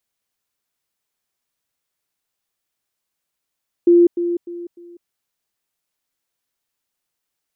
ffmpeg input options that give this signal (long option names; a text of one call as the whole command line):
ffmpeg -f lavfi -i "aevalsrc='pow(10,(-7.5-10*floor(t/0.3))/20)*sin(2*PI*346*t)*clip(min(mod(t,0.3),0.2-mod(t,0.3))/0.005,0,1)':duration=1.2:sample_rate=44100" out.wav